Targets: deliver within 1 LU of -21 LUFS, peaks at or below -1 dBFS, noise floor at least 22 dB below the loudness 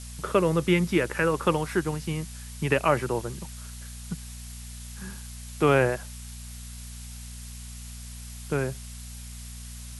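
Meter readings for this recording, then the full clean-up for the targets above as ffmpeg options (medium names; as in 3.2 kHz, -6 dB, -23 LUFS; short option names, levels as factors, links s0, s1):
hum 60 Hz; highest harmonic 240 Hz; hum level -39 dBFS; noise floor -41 dBFS; noise floor target -49 dBFS; loudness -26.5 LUFS; peak level -8.0 dBFS; loudness target -21.0 LUFS
-> -af "bandreject=f=60:t=h:w=4,bandreject=f=120:t=h:w=4,bandreject=f=180:t=h:w=4,bandreject=f=240:t=h:w=4"
-af "afftdn=nr=8:nf=-41"
-af "volume=1.88"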